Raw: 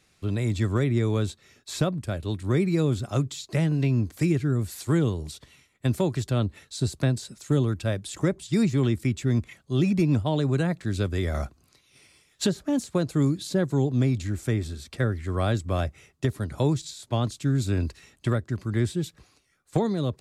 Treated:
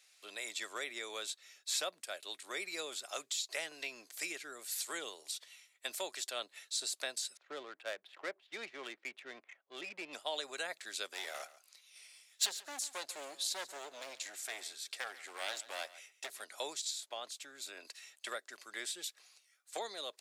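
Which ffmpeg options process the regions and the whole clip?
-filter_complex "[0:a]asettb=1/sr,asplit=3[a][b][c];[a]atrim=end=7.374[d];[b]atrim=start=7.37:end=10.13,asetpts=PTS-STARTPTS,afade=t=in:d=0.004:c=qsin,afade=t=out:st=2.756:d=0.004:c=qsin,lowpass=2.9k,adynamicsmooth=sensitivity=7:basefreq=1.3k[e];[c]atrim=start=10.126[f];[d][e]acrossfade=d=0.004:c1=hsin:c2=qsin[g];[g][f]acrossfade=d=0.004:c1=qsin:c2=hsin,asettb=1/sr,asplit=3[h][i][j];[h]atrim=end=11.074[k];[i]atrim=start=11.07:end=16.42,asetpts=PTS-STARTPTS,afade=t=in:d=0.004:c=qsin,afade=t=out:st=5.346:d=0.004:c=qsin,volume=24.5dB,asoftclip=hard,volume=-24.5dB,aecho=1:1:140:0.141,atrim=end_sample=235935[l];[j]atrim=start=16.416[m];[k][l]acrossfade=d=0.004:c1=hsin:c2=qsin[n];[n][m]acrossfade=d=0.004:c1=qsin:c2=hsin,asettb=1/sr,asplit=3[o][p][q];[o]atrim=end=17.004[r];[p]atrim=start=17:end=17.85,asetpts=PTS-STARTPTS,afade=t=in:d=0.004:c=qsin,afade=t=out:st=0.846:d=0.004:c=qsin,equalizer=f=7.6k:t=o:w=2.5:g=-6,acompressor=threshold=-25dB:ratio=2.5:attack=3.2:release=140:knee=1:detection=peak[s];[q]atrim=start=17.846[t];[r][s]acrossfade=d=0.004:c1=hsin:c2=qsin[u];[u][t]acrossfade=d=0.004:c1=qsin:c2=hsin,highpass=f=700:w=0.5412,highpass=f=700:w=1.3066,equalizer=f=1k:t=o:w=1.6:g=-11.5,volume=1.5dB"

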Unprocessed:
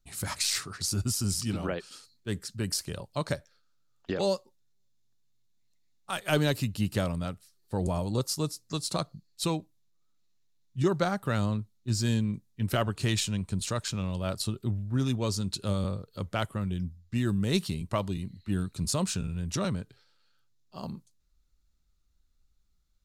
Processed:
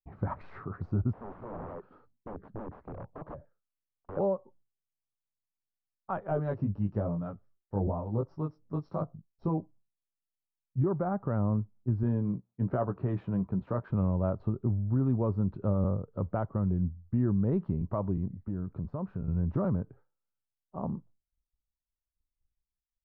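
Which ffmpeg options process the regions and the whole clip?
-filter_complex "[0:a]asettb=1/sr,asplit=3[a][b][c];[a]atrim=end=1.134[d];[b]atrim=start=1.13:end=4.17,asetpts=PTS-STARTPTS,afade=t=in:d=0.004:c=qsin,afade=t=out:st=3.036:d=0.004:c=qsin,acompressor=threshold=-38dB:ratio=3:attack=3.2:release=140:knee=1:detection=peak,aeval=exprs='(mod(70.8*val(0)+1,2)-1)/70.8':c=same[e];[c]atrim=start=4.166[f];[d][e]acrossfade=d=0.004:c1=hsin:c2=qsin[g];[g][f]acrossfade=d=0.004:c1=qsin:c2=hsin,asettb=1/sr,asplit=3[h][i][j];[h]atrim=end=6.274[k];[i]atrim=start=6.27:end=9.58,asetpts=PTS-STARTPTS,afade=t=in:d=0.004:c=qsin,afade=t=out:st=3.306:d=0.004:c=qsin,acrossover=split=990[l][m];[l]aeval=exprs='val(0)*(1-0.5/2+0.5/2*cos(2*PI*2.5*n/s))':c=same[n];[m]aeval=exprs='val(0)*(1-0.5/2-0.5/2*cos(2*PI*2.5*n/s))':c=same[o];[n][o]amix=inputs=2:normalize=0,lowpass=f=5.5k:t=q:w=14,flanger=delay=18:depth=2.1:speed=1[p];[j]atrim=start=9.576[q];[k][p]acrossfade=d=0.004:c1=hsin:c2=qsin[r];[r][q]acrossfade=d=0.004:c1=qsin:c2=hsin,asettb=1/sr,asplit=3[s][t][u];[s]atrim=end=12.034[v];[t]atrim=start=12.03:end=13.9,asetpts=PTS-STARTPTS,afade=t=in:d=0.004:c=qsin,afade=t=out:st=1.866:d=0.004:c=qsin,highpass=f=170:p=1,asplit=2[w][x];[x]adelay=16,volume=-8dB[y];[w][y]amix=inputs=2:normalize=0,atrim=end_sample=82467[z];[u]atrim=start=13.896[aa];[v][z]acrossfade=d=0.004:c1=hsin:c2=qsin[ab];[ab][aa]acrossfade=d=0.004:c1=qsin:c2=hsin,asettb=1/sr,asplit=3[ac][ad][ae];[ac]atrim=end=18.274[af];[ad]atrim=start=18.27:end=19.28,asetpts=PTS-STARTPTS,afade=t=in:d=0.004:c=qsin,afade=t=out:st=1.006:d=0.004:c=qsin,agate=range=-33dB:threshold=-57dB:ratio=3:release=100:detection=peak,acompressor=threshold=-36dB:ratio=4:attack=3.2:release=140:knee=1:detection=peak[ag];[ae]atrim=start=19.276[ah];[af][ag]acrossfade=d=0.004:c1=hsin:c2=qsin[ai];[ai][ah]acrossfade=d=0.004:c1=qsin:c2=hsin,agate=range=-33dB:threshold=-53dB:ratio=3:detection=peak,lowpass=f=1.1k:w=0.5412,lowpass=f=1.1k:w=1.3066,alimiter=level_in=0.5dB:limit=-24dB:level=0:latency=1:release=182,volume=-0.5dB,volume=4.5dB"

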